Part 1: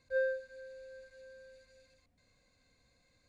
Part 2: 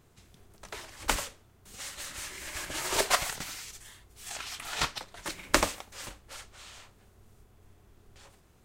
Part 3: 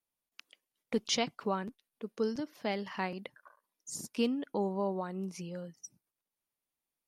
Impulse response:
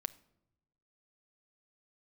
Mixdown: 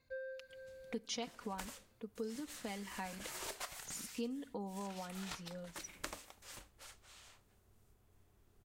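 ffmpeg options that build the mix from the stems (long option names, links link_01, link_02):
-filter_complex "[0:a]lowpass=4700,acompressor=threshold=-38dB:ratio=12,volume=-4dB[link_01];[1:a]adelay=500,volume=-12dB,asplit=2[link_02][link_03];[link_03]volume=-19.5dB[link_04];[2:a]aecho=1:1:4.1:0.6,volume=-9.5dB,asplit=3[link_05][link_06][link_07];[link_06]volume=-8dB[link_08];[link_07]apad=whole_len=144657[link_09];[link_01][link_09]sidechaincompress=threshold=-49dB:ratio=8:attack=22:release=765[link_10];[link_02][link_05]amix=inputs=2:normalize=0,acompressor=threshold=-44dB:ratio=10,volume=0dB[link_11];[3:a]atrim=start_sample=2205[link_12];[link_04][link_08]amix=inputs=2:normalize=0[link_13];[link_13][link_12]afir=irnorm=-1:irlink=0[link_14];[link_10][link_11][link_14]amix=inputs=3:normalize=0,highshelf=frequency=9900:gain=6"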